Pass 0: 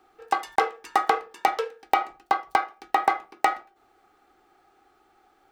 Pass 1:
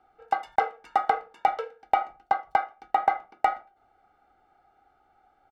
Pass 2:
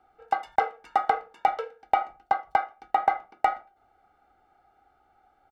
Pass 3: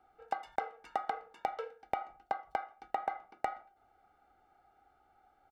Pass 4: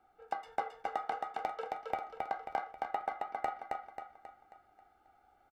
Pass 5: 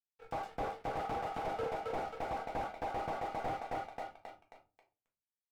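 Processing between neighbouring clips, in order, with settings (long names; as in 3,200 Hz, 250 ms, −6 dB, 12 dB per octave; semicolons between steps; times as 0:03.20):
low-pass filter 1,300 Hz 6 dB per octave; comb filter 1.4 ms, depth 60%; level −2.5 dB
parametric band 64 Hz +3 dB
downward compressor 6 to 1, threshold −27 dBFS, peak gain reduction 11 dB; level −4 dB
flanger 0.65 Hz, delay 8.5 ms, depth 8.3 ms, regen +62%; repeating echo 269 ms, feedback 46%, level −3 dB; level +3 dB
dead-zone distortion −55 dBFS; rectangular room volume 130 cubic metres, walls furnished, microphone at 1.6 metres; slew-rate limiting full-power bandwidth 9.8 Hz; level +3 dB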